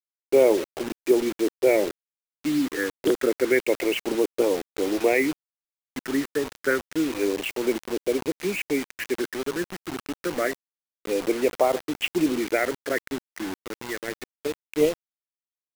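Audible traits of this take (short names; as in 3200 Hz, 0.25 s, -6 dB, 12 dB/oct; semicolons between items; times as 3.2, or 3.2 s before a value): phasing stages 12, 0.28 Hz, lowest notch 720–1700 Hz; a quantiser's noise floor 6-bit, dither none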